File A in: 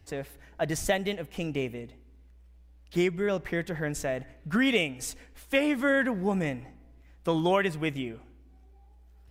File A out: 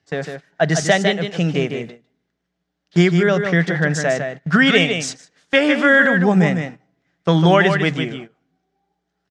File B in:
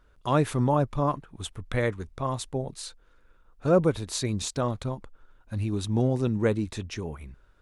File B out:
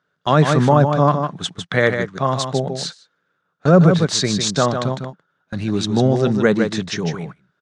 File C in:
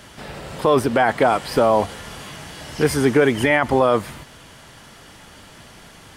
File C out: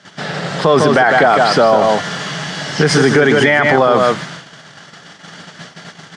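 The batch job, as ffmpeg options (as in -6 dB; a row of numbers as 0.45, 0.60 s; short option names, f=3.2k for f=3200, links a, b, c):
-af "highpass=f=150:w=0.5412,highpass=f=150:w=1.3066,equalizer=f=170:t=q:w=4:g=9,equalizer=f=340:t=q:w=4:g=-4,equalizer=f=510:t=q:w=4:g=-4,equalizer=f=960:t=q:w=4:g=-6,equalizer=f=1.6k:t=q:w=4:g=3,equalizer=f=2.5k:t=q:w=4:g=-6,lowpass=f=6.6k:w=0.5412,lowpass=f=6.6k:w=1.3066,aecho=1:1:153:0.447,agate=range=-16dB:threshold=-43dB:ratio=16:detection=peak,equalizer=f=230:t=o:w=0.89:g=-6.5,alimiter=level_in=15dB:limit=-1dB:release=50:level=0:latency=1,volume=-1dB"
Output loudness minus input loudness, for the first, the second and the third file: +12.5, +10.0, +6.0 LU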